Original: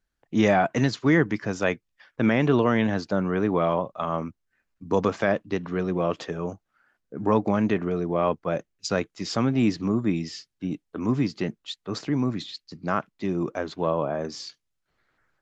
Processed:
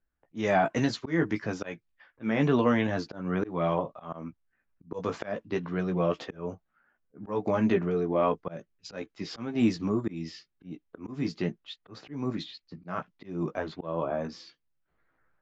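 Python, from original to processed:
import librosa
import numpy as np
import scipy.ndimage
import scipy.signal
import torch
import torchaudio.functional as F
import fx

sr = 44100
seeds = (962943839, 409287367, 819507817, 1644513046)

y = fx.env_lowpass(x, sr, base_hz=2000.0, full_db=-17.5)
y = fx.chorus_voices(y, sr, voices=6, hz=0.27, base_ms=15, depth_ms=3.6, mix_pct=35)
y = fx.auto_swell(y, sr, attack_ms=225.0)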